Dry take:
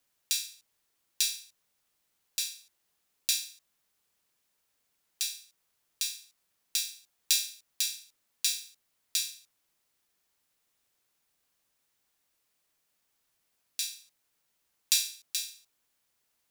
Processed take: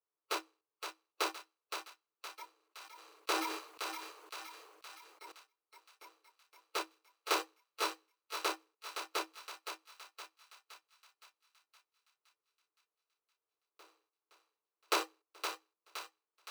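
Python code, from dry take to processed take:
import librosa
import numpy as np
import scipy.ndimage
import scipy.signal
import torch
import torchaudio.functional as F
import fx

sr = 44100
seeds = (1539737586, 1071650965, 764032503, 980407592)

y = scipy.signal.medfilt(x, 25)
y = fx.noise_reduce_blind(y, sr, reduce_db=21)
y = scipy.signal.sosfilt(scipy.signal.cheby1(6, 9, 310.0, 'highpass', fs=sr, output='sos'), y)
y = fx.echo_thinned(y, sr, ms=517, feedback_pct=55, hz=610.0, wet_db=-6.0)
y = fx.sustainer(y, sr, db_per_s=42.0, at=(2.53, 5.32))
y = F.gain(torch.from_numpy(y), 17.0).numpy()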